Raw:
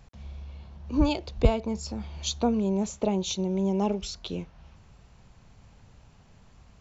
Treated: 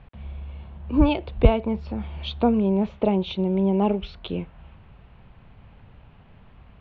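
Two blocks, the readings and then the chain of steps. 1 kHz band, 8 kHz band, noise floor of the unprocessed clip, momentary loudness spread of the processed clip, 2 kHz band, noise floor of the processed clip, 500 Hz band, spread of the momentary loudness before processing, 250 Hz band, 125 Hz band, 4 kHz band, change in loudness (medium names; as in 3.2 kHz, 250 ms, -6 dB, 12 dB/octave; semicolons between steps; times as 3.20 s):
+5.0 dB, no reading, -56 dBFS, 18 LU, +5.0 dB, -51 dBFS, +5.0 dB, 18 LU, +5.0 dB, +5.0 dB, -0.5 dB, +4.5 dB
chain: steep low-pass 3.3 kHz 36 dB/octave; trim +5 dB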